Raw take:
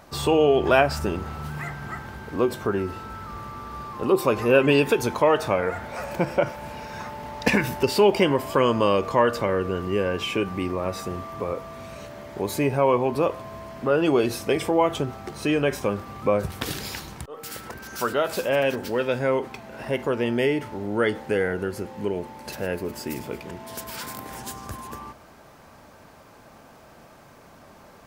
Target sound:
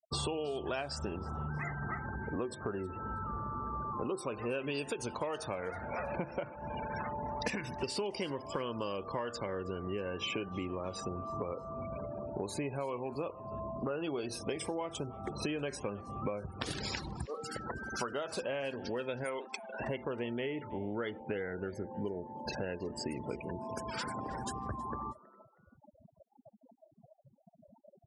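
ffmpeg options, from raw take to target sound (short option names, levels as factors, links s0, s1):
-filter_complex "[0:a]asplit=3[s0][s1][s2];[s0]afade=t=out:st=19.23:d=0.02[s3];[s1]aemphasis=mode=production:type=riaa,afade=t=in:st=19.23:d=0.02,afade=t=out:st=19.79:d=0.02[s4];[s2]afade=t=in:st=19.79:d=0.02[s5];[s3][s4][s5]amix=inputs=3:normalize=0,afftfilt=real='re*gte(hypot(re,im),0.02)':imag='im*gte(hypot(re,im),0.02)':win_size=1024:overlap=0.75,acrossover=split=5400[s6][s7];[s6]acompressor=threshold=0.02:ratio=10[s8];[s7]alimiter=level_in=2.99:limit=0.0631:level=0:latency=1:release=216,volume=0.335[s9];[s8][s9]amix=inputs=2:normalize=0,aresample=22050,aresample=44100,asplit=2[s10][s11];[s11]asplit=2[s12][s13];[s12]adelay=320,afreqshift=140,volume=0.0794[s14];[s13]adelay=640,afreqshift=280,volume=0.0254[s15];[s14][s15]amix=inputs=2:normalize=0[s16];[s10][s16]amix=inputs=2:normalize=0"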